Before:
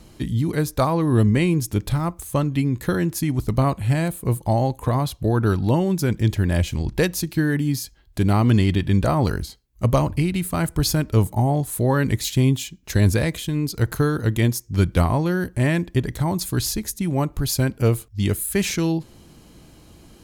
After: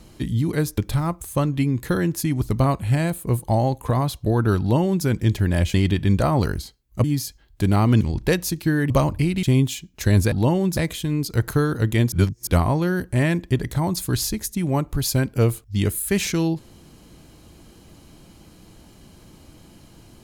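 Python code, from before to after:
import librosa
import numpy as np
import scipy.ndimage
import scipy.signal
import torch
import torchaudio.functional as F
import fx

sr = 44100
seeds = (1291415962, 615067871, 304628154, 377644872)

y = fx.edit(x, sr, fx.cut(start_s=0.78, length_s=0.98),
    fx.duplicate(start_s=5.58, length_s=0.45, to_s=13.21),
    fx.swap(start_s=6.72, length_s=0.89, other_s=8.58, other_length_s=1.3),
    fx.cut(start_s=10.41, length_s=1.91),
    fx.reverse_span(start_s=14.56, length_s=0.35), tone=tone)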